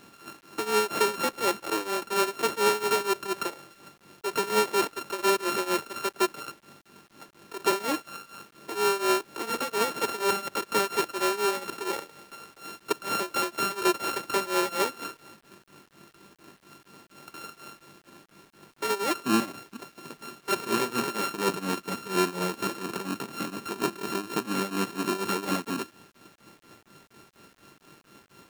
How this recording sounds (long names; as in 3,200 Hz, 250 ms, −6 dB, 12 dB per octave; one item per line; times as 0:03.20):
a buzz of ramps at a fixed pitch in blocks of 32 samples
tremolo triangle 4.2 Hz, depth 90%
a quantiser's noise floor 10 bits, dither none